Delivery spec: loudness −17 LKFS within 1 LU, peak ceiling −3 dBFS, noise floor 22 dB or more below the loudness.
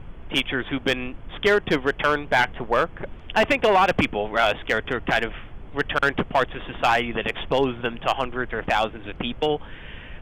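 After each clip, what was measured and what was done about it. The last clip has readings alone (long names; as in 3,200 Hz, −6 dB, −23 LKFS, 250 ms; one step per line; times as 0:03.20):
share of clipped samples 0.6%; peaks flattened at −11.5 dBFS; background noise floor −41 dBFS; target noise floor −45 dBFS; integrated loudness −23.0 LKFS; sample peak −11.5 dBFS; target loudness −17.0 LKFS
→ clipped peaks rebuilt −11.5 dBFS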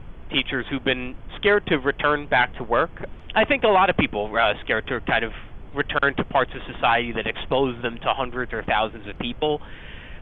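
share of clipped samples 0.0%; background noise floor −41 dBFS; target noise floor −45 dBFS
→ noise reduction from a noise print 6 dB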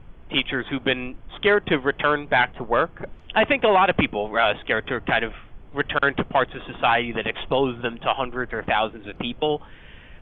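background noise floor −46 dBFS; integrated loudness −23.0 LKFS; sample peak −6.0 dBFS; target loudness −17.0 LKFS
→ level +6 dB
brickwall limiter −3 dBFS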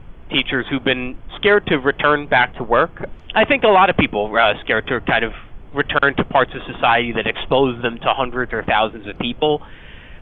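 integrated loudness −17.5 LKFS; sample peak −3.0 dBFS; background noise floor −40 dBFS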